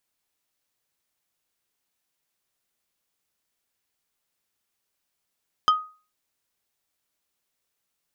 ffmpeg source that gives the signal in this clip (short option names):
-f lavfi -i "aevalsrc='0.251*pow(10,-3*t/0.36)*sin(2*PI*1250*t)+0.1*pow(10,-3*t/0.12)*sin(2*PI*3125*t)+0.0398*pow(10,-3*t/0.068)*sin(2*PI*5000*t)+0.0158*pow(10,-3*t/0.052)*sin(2*PI*6250*t)+0.00631*pow(10,-3*t/0.038)*sin(2*PI*8125*t)':d=0.45:s=44100"